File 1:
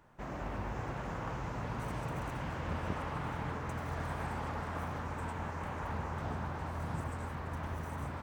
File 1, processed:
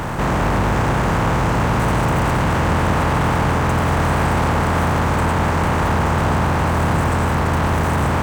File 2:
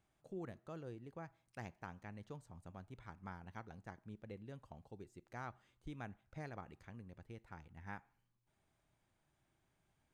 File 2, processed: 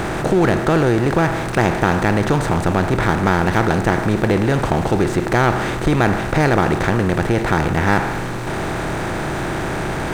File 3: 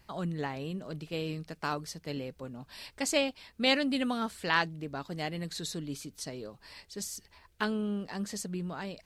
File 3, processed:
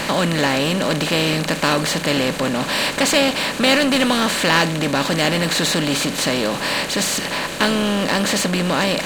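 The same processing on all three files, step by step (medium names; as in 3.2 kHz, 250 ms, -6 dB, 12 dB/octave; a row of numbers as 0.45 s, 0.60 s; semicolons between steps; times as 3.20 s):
spectral levelling over time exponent 0.4; power-law waveshaper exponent 0.7; normalise loudness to -18 LUFS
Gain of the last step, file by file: +13.0 dB, +25.0 dB, +4.5 dB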